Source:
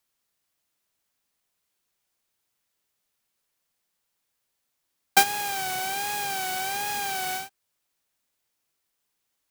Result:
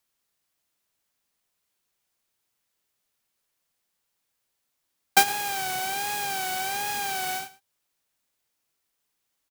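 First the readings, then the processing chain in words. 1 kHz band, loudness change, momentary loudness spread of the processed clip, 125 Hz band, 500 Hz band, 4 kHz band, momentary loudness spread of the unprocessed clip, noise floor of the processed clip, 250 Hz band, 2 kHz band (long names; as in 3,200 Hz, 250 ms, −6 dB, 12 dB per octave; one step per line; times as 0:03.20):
0.0 dB, 0.0 dB, 8 LU, 0.0 dB, 0.0 dB, 0.0 dB, 8 LU, −79 dBFS, 0.0 dB, 0.0 dB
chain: single-tap delay 111 ms −18 dB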